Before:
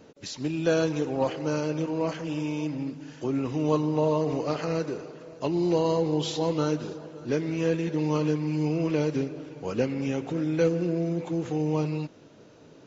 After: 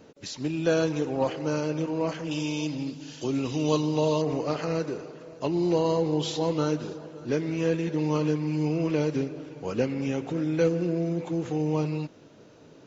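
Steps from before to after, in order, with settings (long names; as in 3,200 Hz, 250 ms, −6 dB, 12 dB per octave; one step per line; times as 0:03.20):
0:02.31–0:04.22: high shelf with overshoot 2,500 Hz +8.5 dB, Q 1.5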